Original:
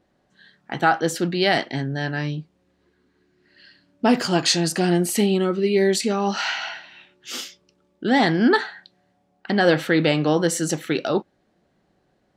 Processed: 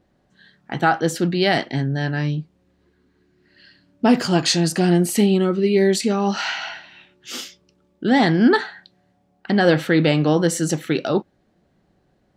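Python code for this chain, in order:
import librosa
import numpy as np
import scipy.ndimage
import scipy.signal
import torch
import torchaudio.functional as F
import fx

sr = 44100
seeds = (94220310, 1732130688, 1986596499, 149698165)

y = fx.low_shelf(x, sr, hz=210.0, db=7.5)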